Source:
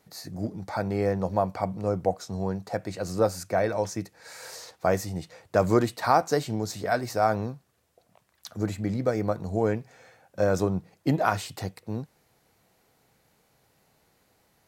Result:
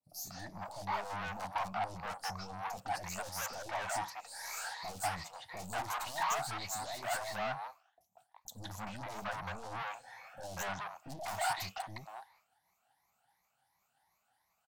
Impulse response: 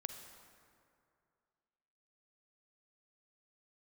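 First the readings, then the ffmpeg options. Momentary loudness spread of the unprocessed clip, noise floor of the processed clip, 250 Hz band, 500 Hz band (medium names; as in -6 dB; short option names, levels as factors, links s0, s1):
14 LU, -79 dBFS, -21.5 dB, -18.0 dB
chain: -filter_complex "[0:a]afftfilt=real='re*pow(10,14/40*sin(2*PI*(0.97*log(max(b,1)*sr/1024/100)/log(2)-(2.8)*(pts-256)/sr)))':imag='im*pow(10,14/40*sin(2*PI*(0.97*log(max(b,1)*sr/1024/100)/log(2)-(2.8)*(pts-256)/sr)))':win_size=1024:overlap=0.75,aeval=exprs='(tanh(50.1*val(0)+0.35)-tanh(0.35))/50.1':c=same,agate=range=0.0224:threshold=0.00178:ratio=3:detection=peak,lowshelf=f=580:t=q:w=3:g=-10.5,acrossover=split=570|4500[s0][s1][s2];[s2]adelay=30[s3];[s1]adelay=190[s4];[s0][s4][s3]amix=inputs=3:normalize=0,volume=1.12"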